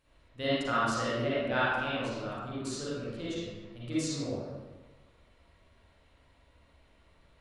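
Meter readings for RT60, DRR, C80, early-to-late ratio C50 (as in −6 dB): 1.3 s, −10.0 dB, −1.5 dB, −6.5 dB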